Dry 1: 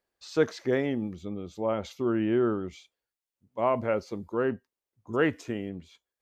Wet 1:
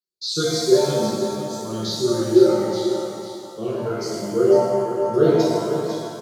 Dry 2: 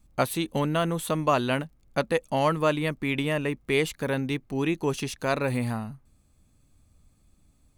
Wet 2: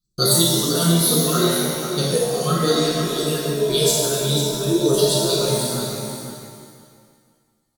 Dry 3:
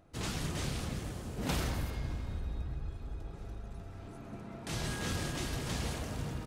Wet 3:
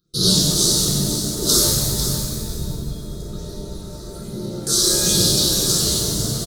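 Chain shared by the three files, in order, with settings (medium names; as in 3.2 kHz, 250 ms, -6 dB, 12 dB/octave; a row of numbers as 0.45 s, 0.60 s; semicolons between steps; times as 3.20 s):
high-pass 49 Hz 6 dB/octave; reverb removal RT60 1.6 s; gate with hold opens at -52 dBFS; phase shifter stages 6, 1.2 Hz, lowest notch 140–2400 Hz; Butterworth band-stop 870 Hz, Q 1.2; resonant high shelf 3.2 kHz +7 dB, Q 3; static phaser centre 400 Hz, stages 8; feedback delay 498 ms, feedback 18%, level -9 dB; pitch-shifted reverb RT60 1.6 s, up +7 st, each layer -8 dB, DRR -6 dB; peak normalisation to -3 dBFS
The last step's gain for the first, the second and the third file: +7.5 dB, +7.5 dB, +16.0 dB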